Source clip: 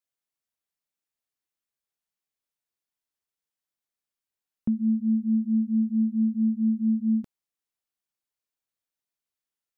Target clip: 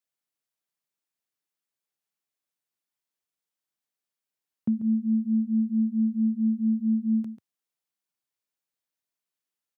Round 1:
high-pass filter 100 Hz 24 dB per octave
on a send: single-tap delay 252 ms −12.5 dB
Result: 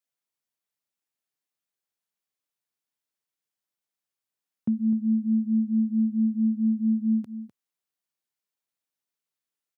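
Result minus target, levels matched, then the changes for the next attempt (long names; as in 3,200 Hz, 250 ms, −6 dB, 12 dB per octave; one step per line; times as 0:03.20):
echo 112 ms late
change: single-tap delay 140 ms −12.5 dB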